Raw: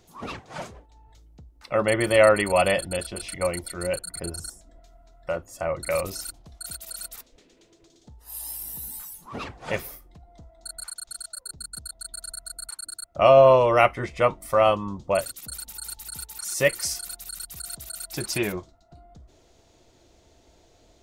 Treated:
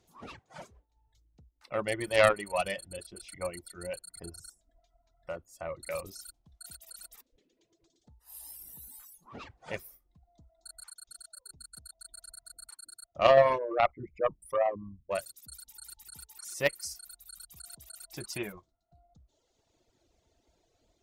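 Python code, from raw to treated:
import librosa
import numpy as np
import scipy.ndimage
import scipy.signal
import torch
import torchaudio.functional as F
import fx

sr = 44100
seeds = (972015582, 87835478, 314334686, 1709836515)

y = fx.envelope_sharpen(x, sr, power=3.0, at=(13.57, 15.1), fade=0.02)
y = fx.cheby_harmonics(y, sr, harmonics=(3,), levels_db=(-13,), full_scale_db=-4.0)
y = fx.dereverb_blind(y, sr, rt60_s=1.4)
y = F.gain(torch.from_numpy(y), -1.0).numpy()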